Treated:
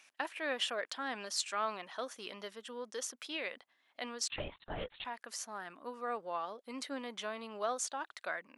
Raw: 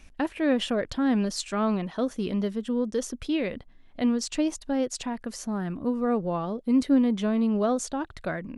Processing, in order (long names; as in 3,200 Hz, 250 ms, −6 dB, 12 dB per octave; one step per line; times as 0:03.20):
high-pass filter 900 Hz 12 dB per octave
0:04.28–0:05.05: linear-prediction vocoder at 8 kHz whisper
level −2.5 dB